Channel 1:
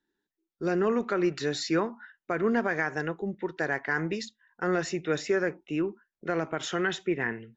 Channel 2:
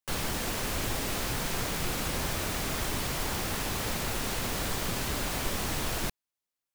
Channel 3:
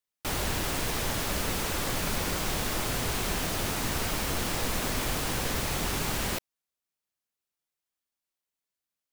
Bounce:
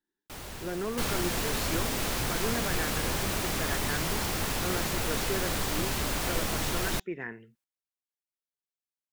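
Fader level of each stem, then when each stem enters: -8.0, +1.0, -11.5 dB; 0.00, 0.90, 0.05 s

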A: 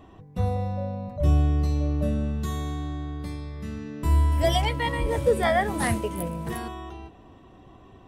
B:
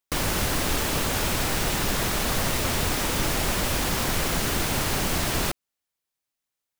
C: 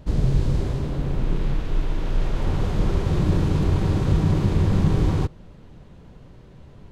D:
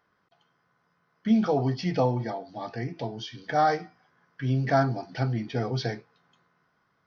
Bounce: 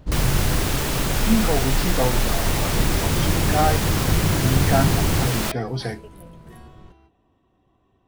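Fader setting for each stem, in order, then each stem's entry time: -14.5, +0.5, -1.5, +1.5 dB; 0.00, 0.00, 0.00, 0.00 s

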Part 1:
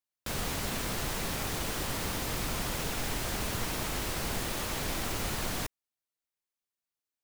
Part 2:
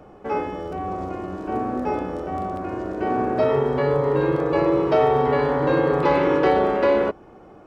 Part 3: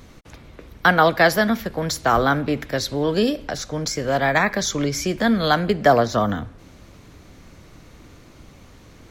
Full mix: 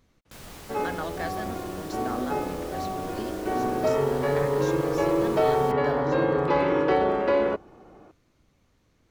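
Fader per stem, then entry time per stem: -10.5, -4.0, -19.5 dB; 0.05, 0.45, 0.00 s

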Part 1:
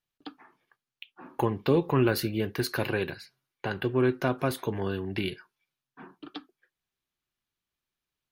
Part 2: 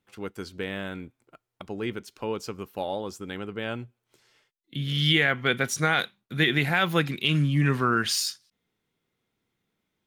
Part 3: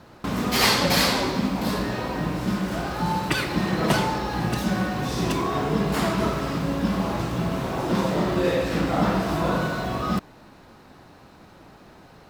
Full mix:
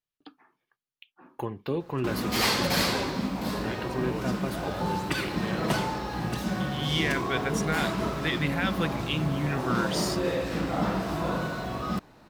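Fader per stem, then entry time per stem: -6.5, -6.5, -5.5 dB; 0.00, 1.85, 1.80 s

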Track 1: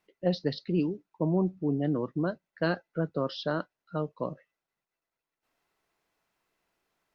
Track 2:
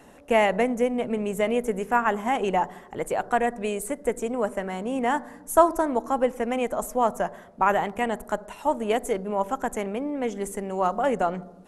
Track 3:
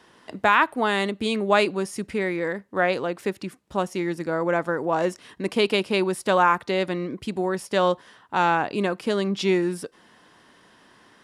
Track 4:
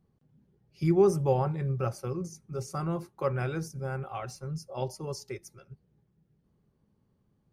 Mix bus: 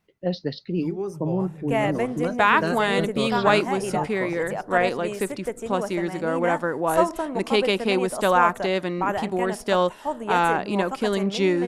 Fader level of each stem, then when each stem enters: +1.5, -4.0, 0.0, -8.0 dB; 0.00, 1.40, 1.95, 0.00 s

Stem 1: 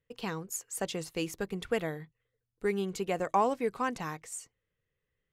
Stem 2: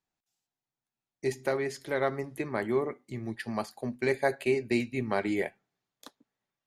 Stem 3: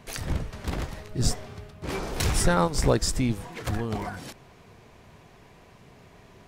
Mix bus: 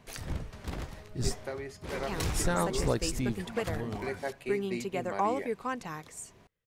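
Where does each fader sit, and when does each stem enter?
-2.5, -9.0, -7.0 dB; 1.85, 0.00, 0.00 s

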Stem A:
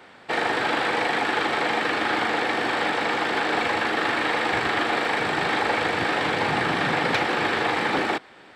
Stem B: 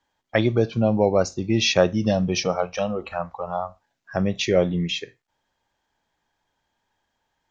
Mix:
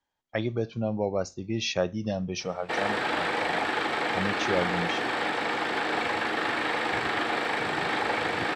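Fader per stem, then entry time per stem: -4.5, -9.0 dB; 2.40, 0.00 s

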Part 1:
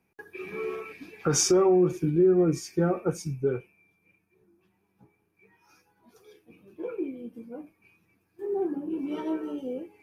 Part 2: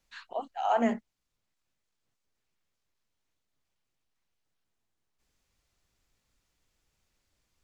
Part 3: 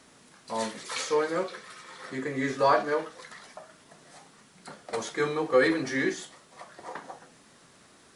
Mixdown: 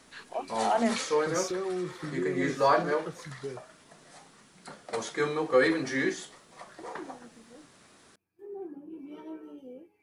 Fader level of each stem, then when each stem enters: -12.0, 0.0, -1.0 dB; 0.00, 0.00, 0.00 s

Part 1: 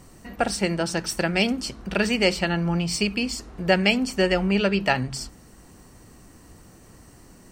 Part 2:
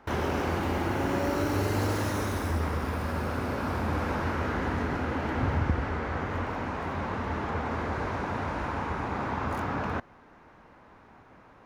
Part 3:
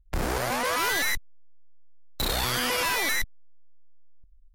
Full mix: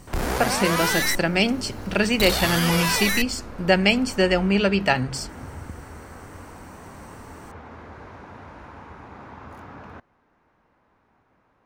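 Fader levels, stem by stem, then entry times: +1.5, -10.5, +2.0 dB; 0.00, 0.00, 0.00 s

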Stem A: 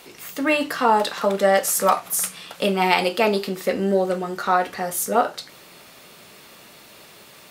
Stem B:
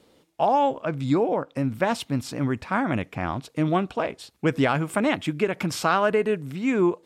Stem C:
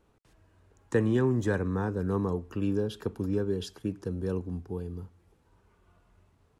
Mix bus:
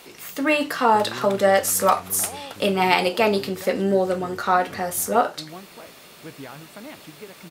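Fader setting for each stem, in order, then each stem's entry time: 0.0, -17.5, -12.5 dB; 0.00, 1.80, 0.00 s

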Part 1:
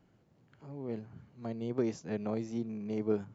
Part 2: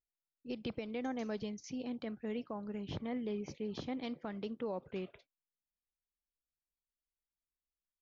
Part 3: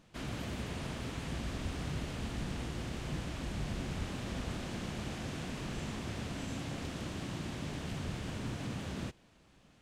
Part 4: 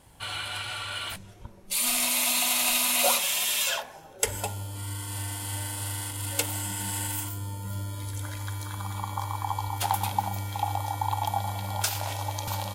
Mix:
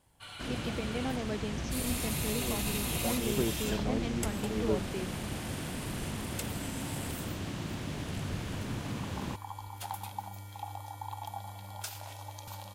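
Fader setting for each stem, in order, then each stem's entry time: -0.5, +2.5, +2.0, -12.5 dB; 1.60, 0.00, 0.25, 0.00 s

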